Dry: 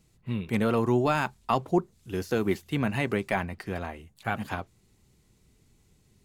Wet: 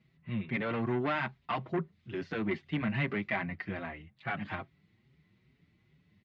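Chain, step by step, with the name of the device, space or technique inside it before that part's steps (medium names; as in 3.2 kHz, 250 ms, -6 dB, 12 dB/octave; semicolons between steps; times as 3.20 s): barber-pole flanger into a guitar amplifier (endless flanger 5.9 ms +2.4 Hz; saturation -25 dBFS, distortion -11 dB; cabinet simulation 94–3700 Hz, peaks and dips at 160 Hz +6 dB, 460 Hz -7 dB, 850 Hz -4 dB, 2 kHz +8 dB)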